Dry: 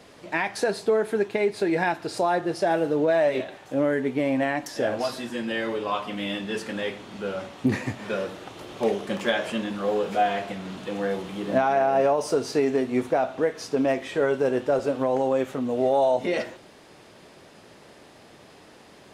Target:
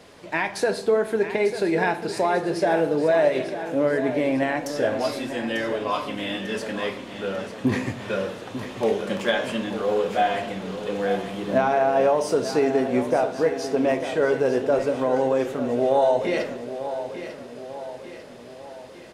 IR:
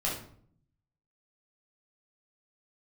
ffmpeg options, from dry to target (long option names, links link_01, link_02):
-filter_complex "[0:a]aecho=1:1:895|1790|2685|3580|4475|5370:0.282|0.147|0.0762|0.0396|0.0206|0.0107,asplit=2[link_01][link_02];[1:a]atrim=start_sample=2205,asetrate=34839,aresample=44100[link_03];[link_02][link_03]afir=irnorm=-1:irlink=0,volume=-17.5dB[link_04];[link_01][link_04]amix=inputs=2:normalize=0"